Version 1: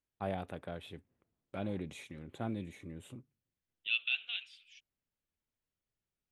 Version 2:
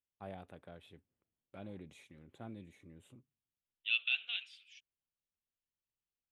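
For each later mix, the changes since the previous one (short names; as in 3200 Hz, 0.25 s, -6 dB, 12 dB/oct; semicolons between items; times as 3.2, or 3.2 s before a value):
first voice -10.0 dB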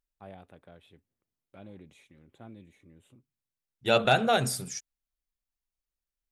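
second voice: remove Butterworth band-pass 2900 Hz, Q 3.5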